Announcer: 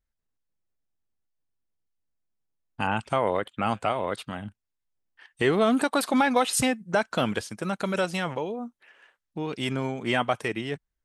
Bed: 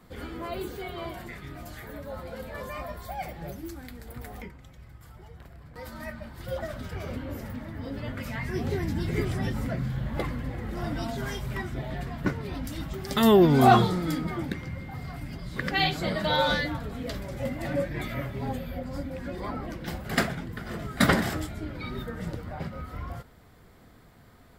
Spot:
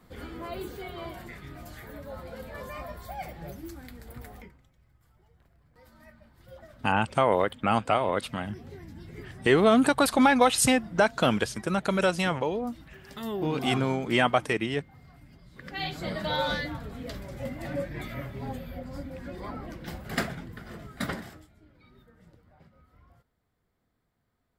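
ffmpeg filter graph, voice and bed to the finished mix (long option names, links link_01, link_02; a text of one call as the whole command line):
ffmpeg -i stem1.wav -i stem2.wav -filter_complex "[0:a]adelay=4050,volume=2dB[link_01];[1:a]volume=9dB,afade=type=out:start_time=4.17:duration=0.53:silence=0.223872,afade=type=in:start_time=15.6:duration=0.51:silence=0.266073,afade=type=out:start_time=20.34:duration=1.12:silence=0.11885[link_02];[link_01][link_02]amix=inputs=2:normalize=0" out.wav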